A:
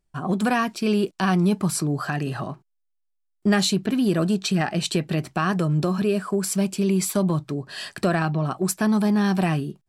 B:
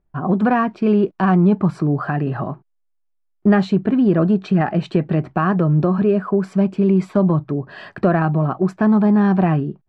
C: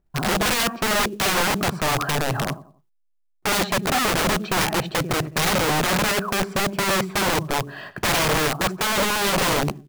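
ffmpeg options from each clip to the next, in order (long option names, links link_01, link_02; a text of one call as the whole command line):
ffmpeg -i in.wav -af "lowpass=1400,volume=6dB" out.wav
ffmpeg -i in.wav -af "aecho=1:1:91|182|273:0.15|0.0524|0.0183,aeval=exprs='(mod(6.31*val(0)+1,2)-1)/6.31':channel_layout=same,acrusher=bits=6:mode=log:mix=0:aa=0.000001" out.wav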